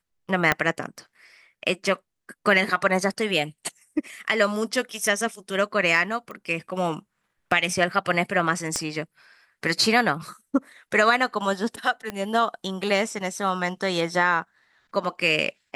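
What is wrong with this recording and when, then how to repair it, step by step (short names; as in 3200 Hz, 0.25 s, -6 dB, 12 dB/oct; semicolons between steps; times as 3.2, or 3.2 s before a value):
0.52 pop -5 dBFS
6.31 pop -25 dBFS
8.76 pop -12 dBFS
12.1 pop -16 dBFS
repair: de-click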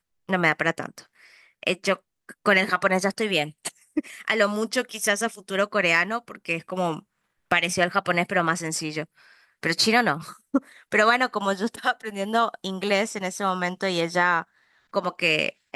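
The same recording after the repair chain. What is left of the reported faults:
0.52 pop
8.76 pop
12.1 pop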